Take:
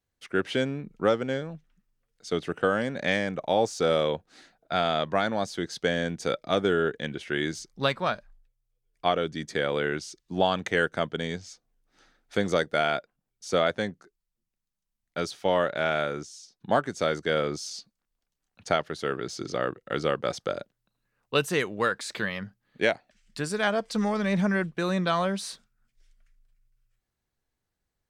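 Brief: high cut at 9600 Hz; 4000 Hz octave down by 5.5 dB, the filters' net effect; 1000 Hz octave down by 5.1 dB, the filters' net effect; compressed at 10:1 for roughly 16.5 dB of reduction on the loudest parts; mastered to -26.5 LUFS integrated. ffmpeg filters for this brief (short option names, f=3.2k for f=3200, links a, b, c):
-af "lowpass=9.6k,equalizer=f=1k:t=o:g=-7.5,equalizer=f=4k:t=o:g=-6.5,acompressor=threshold=-38dB:ratio=10,volume=17.5dB"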